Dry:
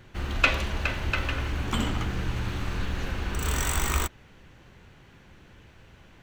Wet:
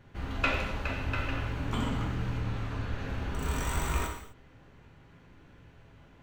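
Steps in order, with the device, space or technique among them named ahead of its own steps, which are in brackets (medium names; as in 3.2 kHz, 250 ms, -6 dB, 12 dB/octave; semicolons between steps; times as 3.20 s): 2.37–3.09 s: treble shelf 9 kHz -7 dB; behind a face mask (treble shelf 2 kHz -8 dB); gated-style reverb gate 280 ms falling, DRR -0.5 dB; trim -5 dB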